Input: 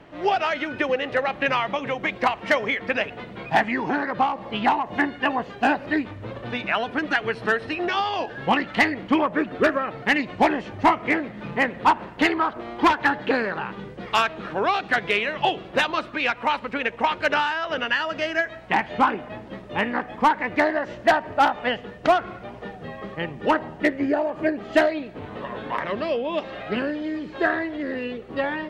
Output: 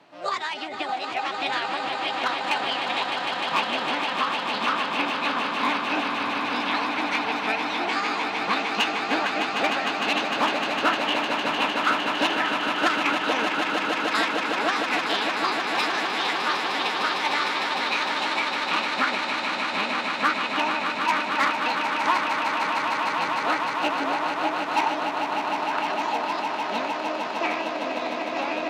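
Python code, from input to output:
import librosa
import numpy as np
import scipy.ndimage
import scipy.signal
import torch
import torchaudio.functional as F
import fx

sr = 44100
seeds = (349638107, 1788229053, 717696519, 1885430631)

y = scipy.signal.sosfilt(scipy.signal.butter(2, 200.0, 'highpass', fs=sr, output='sos'), x)
y = fx.echo_swell(y, sr, ms=152, loudest=8, wet_db=-8)
y = fx.formant_shift(y, sr, semitones=6)
y = y * 10.0 ** (-6.0 / 20.0)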